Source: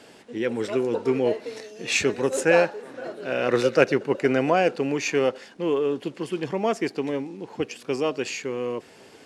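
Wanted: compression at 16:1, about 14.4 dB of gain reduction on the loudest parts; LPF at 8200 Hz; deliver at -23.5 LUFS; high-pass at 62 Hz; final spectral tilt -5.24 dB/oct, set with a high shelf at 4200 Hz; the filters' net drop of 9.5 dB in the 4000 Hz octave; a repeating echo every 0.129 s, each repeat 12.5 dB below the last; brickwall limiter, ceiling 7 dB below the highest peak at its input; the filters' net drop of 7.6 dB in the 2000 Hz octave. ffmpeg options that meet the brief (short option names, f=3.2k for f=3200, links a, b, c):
-af "highpass=62,lowpass=8.2k,equalizer=f=2k:t=o:g=-7,equalizer=f=4k:t=o:g=-5.5,highshelf=f=4.2k:g=-8,acompressor=threshold=-28dB:ratio=16,alimiter=level_in=2dB:limit=-24dB:level=0:latency=1,volume=-2dB,aecho=1:1:129|258|387:0.237|0.0569|0.0137,volume=12.5dB"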